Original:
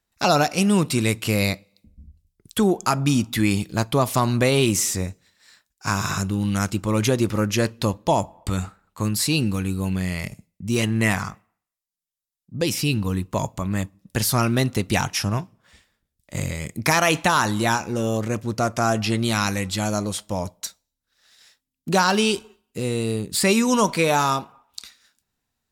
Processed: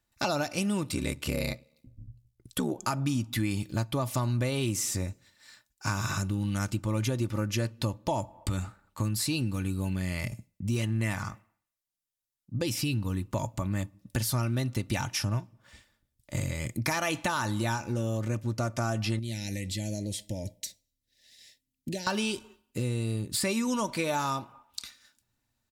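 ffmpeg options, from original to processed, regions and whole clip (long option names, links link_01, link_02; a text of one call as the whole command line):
ffmpeg -i in.wav -filter_complex "[0:a]asettb=1/sr,asplit=3[link_01][link_02][link_03];[link_01]atrim=end=0.914[link_04];[link_02]atrim=start=0.91:end=2.78,asetpts=PTS-STARTPTS,afade=type=in:duration=0.004:curve=qsin,afade=type=out:start_time=1.866:duration=0.004:curve=qsin,equalizer=frequency=500:width_type=o:width=0.21:gain=5.5,aeval=exprs='val(0)*sin(2*PI*35*n/s)':channel_layout=same[link_05];[link_03]atrim=start=2.776[link_06];[link_04][link_05]acrossfade=duration=0.004:curve1=hsin:curve2=qsin[link_07];[link_07][link_06]acrossfade=duration=0.004:curve1=qsin:curve2=hsin,asettb=1/sr,asplit=3[link_08][link_09][link_10];[link_08]atrim=end=19.194[link_11];[link_09]atrim=start=19.19:end=22.07,asetpts=PTS-STARTPTS,afade=type=in:duration=0.004:curve=qsin,afade=type=out:start_time=2.876:duration=0.004:curve=qsin,equalizer=frequency=1900:width=4.6:gain=10,acompressor=threshold=-31dB:ratio=2.5:attack=3.2:release=140:knee=1:detection=peak,asuperstop=centerf=1200:order=4:qfactor=0.64[link_12];[link_10]atrim=start=22.066[link_13];[link_11][link_12]acrossfade=duration=0.004:curve1=hsin:curve2=qsin[link_14];[link_14][link_13]acrossfade=duration=0.004:curve1=qsin:curve2=hsin,equalizer=frequency=120:width=3.1:gain=12,aecho=1:1:3.4:0.42,acompressor=threshold=-27dB:ratio=3,volume=-2dB" out.wav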